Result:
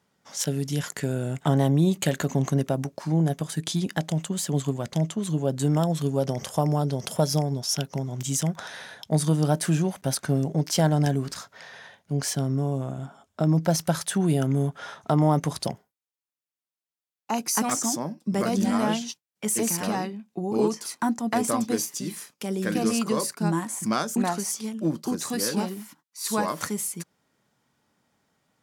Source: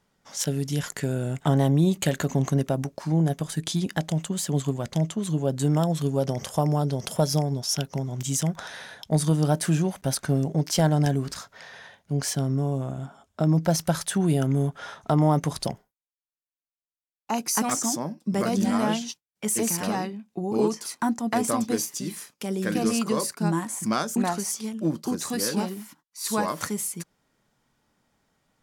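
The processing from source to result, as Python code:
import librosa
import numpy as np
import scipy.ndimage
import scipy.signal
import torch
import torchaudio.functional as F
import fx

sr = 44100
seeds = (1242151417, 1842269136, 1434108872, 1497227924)

y = scipy.signal.sosfilt(scipy.signal.butter(2, 87.0, 'highpass', fs=sr, output='sos'), x)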